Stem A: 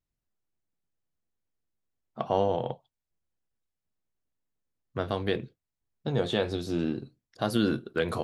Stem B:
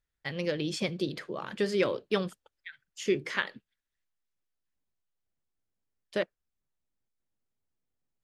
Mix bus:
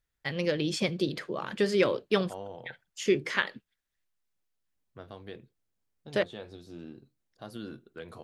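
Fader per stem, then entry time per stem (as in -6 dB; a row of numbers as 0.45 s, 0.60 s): -15.5 dB, +2.5 dB; 0.00 s, 0.00 s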